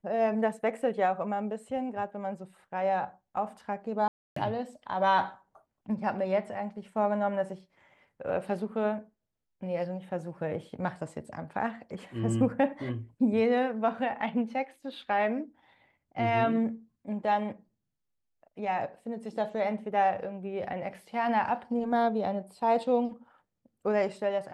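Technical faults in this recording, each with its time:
4.08–4.36 gap 0.284 s

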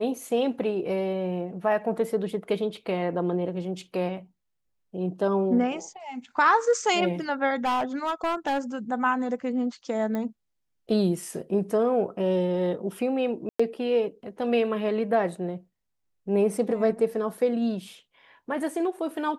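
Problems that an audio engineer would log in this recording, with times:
7.65–8.59 clipped -22 dBFS
10.15 pop -19 dBFS
13.49–13.6 gap 0.105 s

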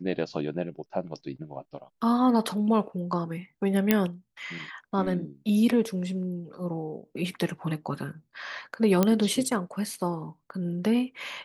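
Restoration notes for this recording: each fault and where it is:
3.91 pop -6 dBFS
9.03 pop -8 dBFS

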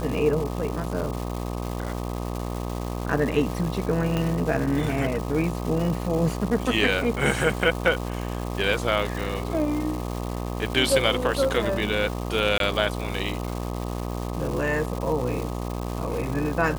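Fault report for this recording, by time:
buzz 60 Hz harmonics 21 -30 dBFS
crackle 500/s -30 dBFS
4.17 pop -12 dBFS
12.58–12.6 gap 22 ms

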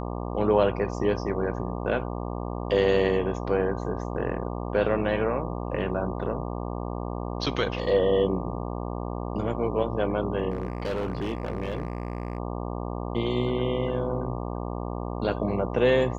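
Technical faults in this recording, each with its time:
buzz 60 Hz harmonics 20 -32 dBFS
10.5–12.38 clipped -24.5 dBFS

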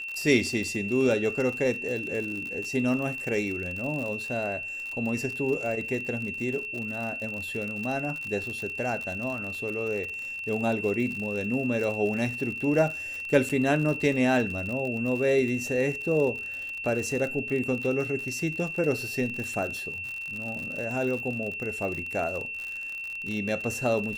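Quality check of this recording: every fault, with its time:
crackle 64/s -32 dBFS
tone 2700 Hz -33 dBFS
13.49–13.5 gap 6.4 ms

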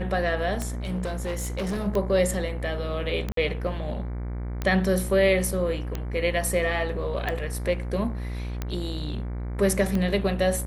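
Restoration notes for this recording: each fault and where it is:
buzz 60 Hz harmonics 39 -31 dBFS
tick 45 rpm -15 dBFS
0.85–1.88 clipped -25 dBFS
3.32–3.37 gap 53 ms

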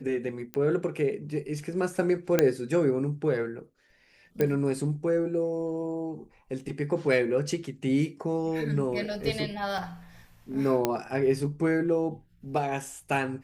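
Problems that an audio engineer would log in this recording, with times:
0.54 pop -19 dBFS
2.39 pop -7 dBFS
4.41 pop -14 dBFS
6.61 gap 3.1 ms
9.78 gap 3.5 ms
10.85 pop -10 dBFS

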